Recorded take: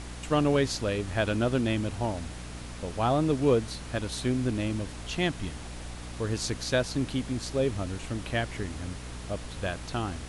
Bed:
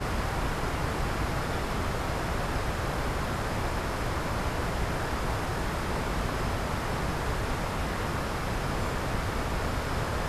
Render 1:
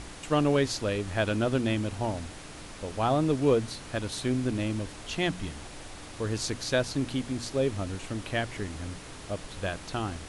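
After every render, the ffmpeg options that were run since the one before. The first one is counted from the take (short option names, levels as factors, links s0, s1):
-af "bandreject=f=60:t=h:w=4,bandreject=f=120:t=h:w=4,bandreject=f=180:t=h:w=4,bandreject=f=240:t=h:w=4"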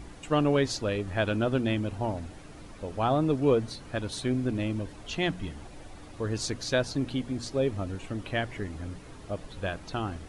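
-af "afftdn=nr=10:nf=-44"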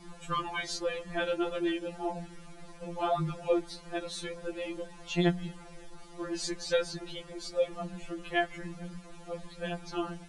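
-af "afftfilt=real='re*2.83*eq(mod(b,8),0)':imag='im*2.83*eq(mod(b,8),0)':win_size=2048:overlap=0.75"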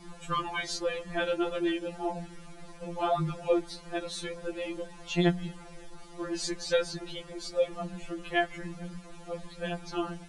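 -af "volume=1.19"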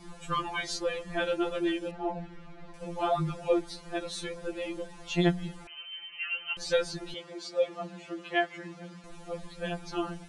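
-filter_complex "[0:a]asettb=1/sr,asplit=3[s0][s1][s2];[s0]atrim=end=1.914[s3];[s1]atrim=start=1.91:end=2.74,asetpts=PTS-STARTPTS,afade=t=in:d=0.004:c=qsin,afade=t=out:st=0.826:d=0.004:c=qsin,lowpass=3000[s4];[s2]atrim=start=2.736[s5];[s3][s4]acrossfade=d=0.004:c1=hsin:c2=qsin[s6];[s6][s5]acrossfade=d=0.004:c1=qsin:c2=hsin,asettb=1/sr,asplit=3[s7][s8][s9];[s7]atrim=end=5.674[s10];[s8]atrim=start=5.67:end=6.57,asetpts=PTS-STARTPTS,afade=t=in:d=0.004:c=qsin,afade=t=out:st=0.896:d=0.004:c=qsin,lowpass=f=2600:t=q:w=0.5098,lowpass=f=2600:t=q:w=0.6013,lowpass=f=2600:t=q:w=0.9,lowpass=f=2600:t=q:w=2.563,afreqshift=-3100[s11];[s9]atrim=start=6.566[s12];[s10][s11]acrossfade=d=0.004:c1=hsin:c2=qsin[s13];[s13][s12]acrossfade=d=0.004:c1=qsin:c2=hsin,asettb=1/sr,asplit=3[s14][s15][s16];[s14]atrim=end=7.144[s17];[s15]atrim=start=7.14:end=9.04,asetpts=PTS-STARTPTS,afade=t=in:d=0.004:c=qsin,afade=t=out:st=1.896:d=0.004:c=qsin,highpass=220,lowpass=6400[s18];[s16]atrim=start=9.036[s19];[s17][s18]acrossfade=d=0.004:c1=hsin:c2=qsin[s20];[s20][s19]acrossfade=d=0.004:c1=qsin:c2=hsin"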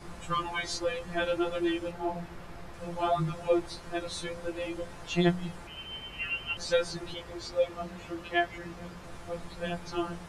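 -filter_complex "[1:a]volume=0.126[s0];[0:a][s0]amix=inputs=2:normalize=0"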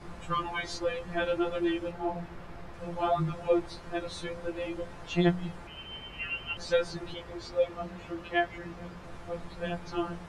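-af "aemphasis=mode=reproduction:type=cd"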